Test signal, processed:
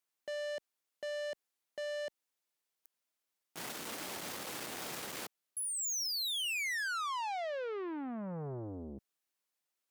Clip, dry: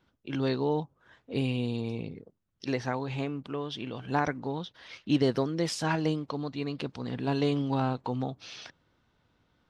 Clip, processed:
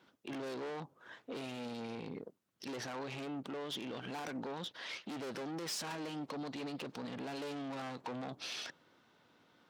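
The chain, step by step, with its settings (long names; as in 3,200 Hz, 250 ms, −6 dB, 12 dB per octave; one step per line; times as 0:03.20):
tube saturation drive 38 dB, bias 0.4
high-pass filter 230 Hz 12 dB per octave
brickwall limiter −40 dBFS
level +6.5 dB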